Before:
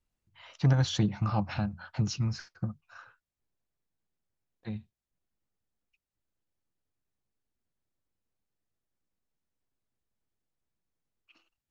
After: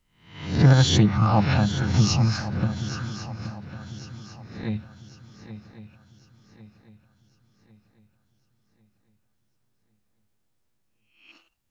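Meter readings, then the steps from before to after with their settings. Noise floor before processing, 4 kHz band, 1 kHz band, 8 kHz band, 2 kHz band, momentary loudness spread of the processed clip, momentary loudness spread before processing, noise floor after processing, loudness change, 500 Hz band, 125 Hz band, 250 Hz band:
below −85 dBFS, +11.5 dB, +11.0 dB, can't be measured, +11.5 dB, 22 LU, 16 LU, −71 dBFS, +8.5 dB, +11.0 dB, +9.5 dB, +10.0 dB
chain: peak hold with a rise ahead of every peak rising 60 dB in 0.55 s
feedback echo with a long and a short gap by turns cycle 1,100 ms, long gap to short 3 to 1, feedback 39%, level −12 dB
level +8 dB

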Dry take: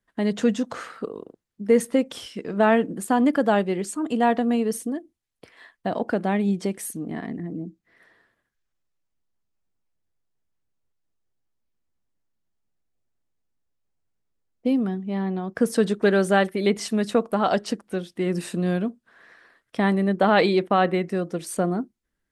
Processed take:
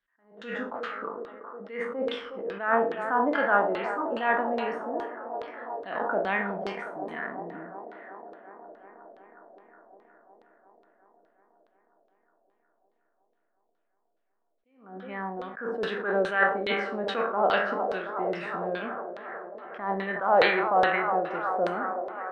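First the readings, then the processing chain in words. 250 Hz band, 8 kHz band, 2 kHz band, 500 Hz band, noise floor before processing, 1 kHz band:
−13.0 dB, below −25 dB, +2.0 dB, −4.5 dB, −80 dBFS, 0.0 dB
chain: peak hold with a decay on every bin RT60 0.58 s
parametric band 110 Hz −12.5 dB 2 octaves
on a send: delay with a band-pass on its return 364 ms, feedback 77%, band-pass 650 Hz, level −10 dB
on the sum: four-comb reverb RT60 0.6 s, combs from 31 ms, DRR 13 dB
auto-filter low-pass saw down 2.4 Hz 510–4,000 Hz
parametric band 1,400 Hz +9 dB 1.5 octaves
level that may rise only so fast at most 110 dB per second
level −8.5 dB

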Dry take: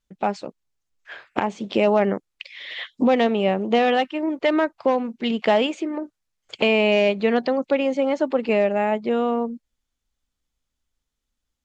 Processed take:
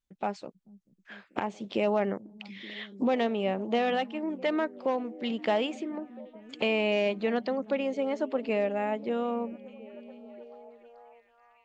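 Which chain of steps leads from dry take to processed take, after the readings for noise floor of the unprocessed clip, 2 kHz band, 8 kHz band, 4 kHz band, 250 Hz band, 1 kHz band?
−81 dBFS, −8.5 dB, can't be measured, −8.5 dB, −8.5 dB, −8.5 dB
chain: echo through a band-pass that steps 437 ms, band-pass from 150 Hz, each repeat 0.7 octaves, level −11.5 dB
level −8.5 dB

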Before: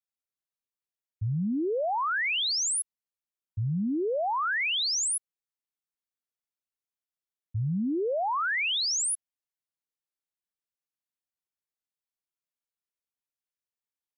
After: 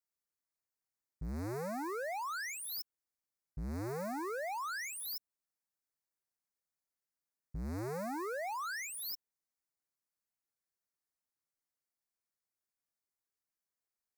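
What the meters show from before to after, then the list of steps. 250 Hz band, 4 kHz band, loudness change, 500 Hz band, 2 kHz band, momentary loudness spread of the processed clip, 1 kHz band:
−11.5 dB, −19.0 dB, −12.5 dB, −9.5 dB, −12.5 dB, 7 LU, −9.5 dB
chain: sub-harmonics by changed cycles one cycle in 2, inverted
dynamic equaliser 4,200 Hz, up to −6 dB, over −43 dBFS, Q 0.74
brickwall limiter −35.5 dBFS, peak gain reduction 10.5 dB
Butterworth band-reject 3,100 Hz, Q 1.6

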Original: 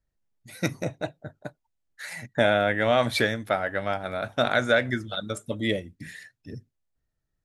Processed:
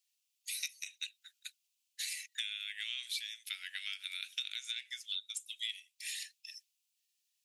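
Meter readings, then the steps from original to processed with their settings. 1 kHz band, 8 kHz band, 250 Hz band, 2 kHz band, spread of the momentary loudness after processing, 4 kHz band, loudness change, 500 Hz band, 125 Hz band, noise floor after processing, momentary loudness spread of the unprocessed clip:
−39.0 dB, +1.0 dB, below −40 dB, −16.0 dB, 12 LU, −3.5 dB, −14.0 dB, below −40 dB, below −40 dB, −83 dBFS, 21 LU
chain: elliptic high-pass filter 2,600 Hz, stop band 80 dB
downward compressor 12 to 1, threshold −49 dBFS, peak gain reduction 23.5 dB
level +12.5 dB

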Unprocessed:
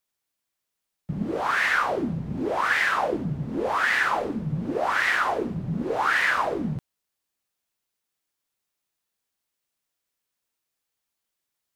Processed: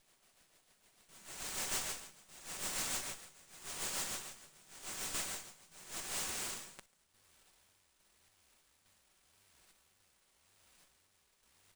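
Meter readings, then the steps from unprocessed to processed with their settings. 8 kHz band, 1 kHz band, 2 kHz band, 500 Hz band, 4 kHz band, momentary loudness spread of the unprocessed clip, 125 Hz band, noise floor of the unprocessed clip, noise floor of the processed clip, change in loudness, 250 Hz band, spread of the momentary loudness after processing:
+6.0 dB, −25.0 dB, −24.5 dB, −25.0 dB, −8.0 dB, 8 LU, −27.5 dB, −83 dBFS, −74 dBFS, −15.5 dB, −27.0 dB, 17 LU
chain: inverse Chebyshev high-pass filter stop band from 2,000 Hz, stop band 70 dB
reverb whose tail is shaped and stops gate 260 ms rising, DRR 12 dB
in parallel at −1 dB: brickwall limiter −45.5 dBFS, peak gain reduction 7.5 dB
on the sum: comb filter 5.3 ms, depth 69%
on a send: single-tap delay 141 ms −18.5 dB
on the sum: rotating-speaker cabinet horn 6.7 Hz, later 0.9 Hz, at 0:05.71
soft clipping −39.5 dBFS, distortion −20 dB
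sample-and-hold tremolo
windowed peak hold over 3 samples
level +17.5 dB

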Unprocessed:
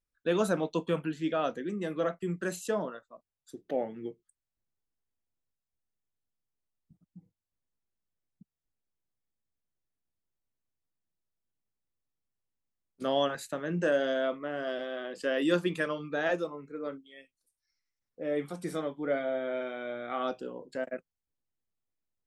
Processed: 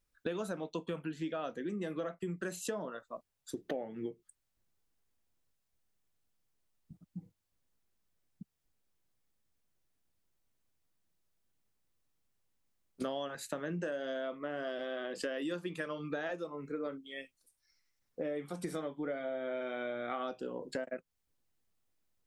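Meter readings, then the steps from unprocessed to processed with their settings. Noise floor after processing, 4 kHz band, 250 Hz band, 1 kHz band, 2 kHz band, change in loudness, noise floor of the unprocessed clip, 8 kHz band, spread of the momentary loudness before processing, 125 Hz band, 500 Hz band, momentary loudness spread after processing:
−82 dBFS, −7.0 dB, −6.0 dB, −7.0 dB, −6.5 dB, −7.0 dB, below −85 dBFS, −2.0 dB, 11 LU, −6.0 dB, −7.0 dB, 10 LU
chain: downward compressor 12 to 1, threshold −42 dBFS, peak gain reduction 21 dB
level +7.5 dB

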